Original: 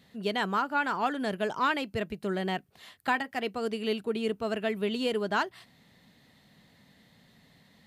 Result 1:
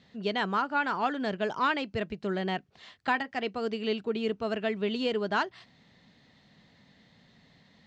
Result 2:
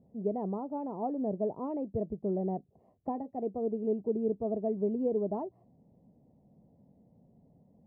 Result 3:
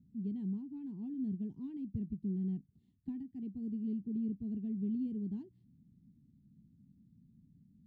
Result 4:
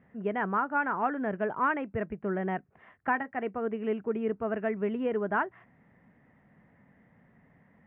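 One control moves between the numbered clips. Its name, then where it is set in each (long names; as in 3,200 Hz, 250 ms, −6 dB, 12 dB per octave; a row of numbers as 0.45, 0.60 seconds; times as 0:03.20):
inverse Chebyshev low-pass filter, stop band from: 11,000, 1,400, 520, 3,900 Hertz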